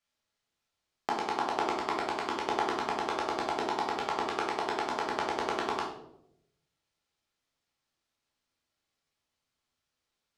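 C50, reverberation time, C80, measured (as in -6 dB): 5.0 dB, 0.80 s, 8.5 dB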